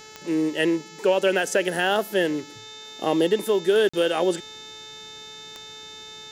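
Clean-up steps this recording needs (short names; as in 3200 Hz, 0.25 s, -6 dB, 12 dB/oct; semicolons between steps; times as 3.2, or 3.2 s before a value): de-click; de-hum 434.3 Hz, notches 17; notch 3600 Hz, Q 30; interpolate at 3.89, 45 ms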